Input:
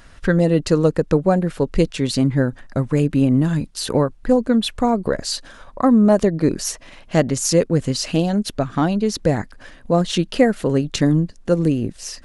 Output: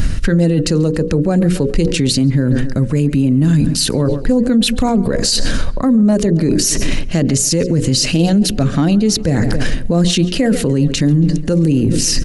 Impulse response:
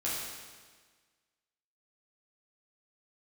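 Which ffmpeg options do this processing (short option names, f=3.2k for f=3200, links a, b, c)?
-filter_complex "[0:a]acrossover=split=280[a][b];[a]acompressor=mode=upward:threshold=-25dB:ratio=2.5[c];[b]equalizer=f=920:t=o:w=1.9:g=-11.5[d];[c][d]amix=inputs=2:normalize=0,bandreject=f=60:t=h:w=6,bandreject=f=120:t=h:w=6,bandreject=f=180:t=h:w=6,bandreject=f=240:t=h:w=6,bandreject=f=300:t=h:w=6,bandreject=f=360:t=h:w=6,bandreject=f=420:t=h:w=6,bandreject=f=480:t=h:w=6,bandreject=f=540:t=h:w=6,asplit=2[e][f];[f]adelay=138,lowpass=f=3.3k:p=1,volume=-21dB,asplit=2[g][h];[h]adelay=138,lowpass=f=3.3k:p=1,volume=0.54,asplit=2[i][j];[j]adelay=138,lowpass=f=3.3k:p=1,volume=0.54,asplit=2[k][l];[l]adelay=138,lowpass=f=3.3k:p=1,volume=0.54[m];[e][g][i][k][m]amix=inputs=5:normalize=0,areverse,acompressor=threshold=-30dB:ratio=10,areverse,bandreject=f=3.4k:w=17,alimiter=level_in=32dB:limit=-1dB:release=50:level=0:latency=1,volume=-5dB"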